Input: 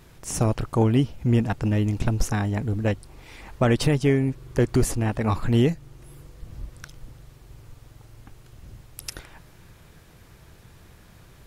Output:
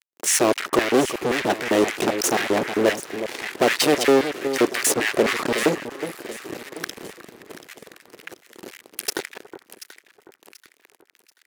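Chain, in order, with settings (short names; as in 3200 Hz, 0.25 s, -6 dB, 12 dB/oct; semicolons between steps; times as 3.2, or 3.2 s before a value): fuzz box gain 35 dB, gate -41 dBFS; LFO high-pass square 3.8 Hz 370–1900 Hz; echo with dull and thin repeats by turns 0.367 s, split 1300 Hz, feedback 61%, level -10 dB; gain -2.5 dB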